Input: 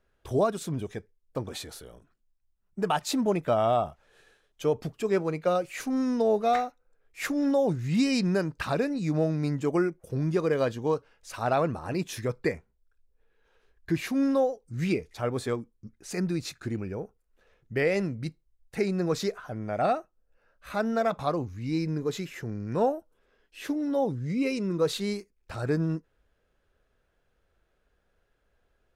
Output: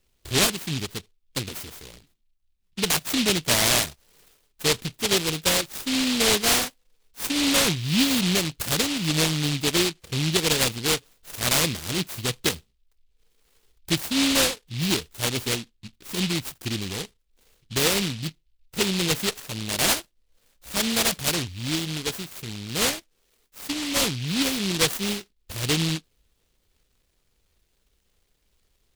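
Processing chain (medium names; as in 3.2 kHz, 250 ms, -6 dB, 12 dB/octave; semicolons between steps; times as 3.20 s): 21.75–23.96 s: bass shelf 450 Hz -4.5 dB; delay time shaken by noise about 3.3 kHz, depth 0.4 ms; trim +3 dB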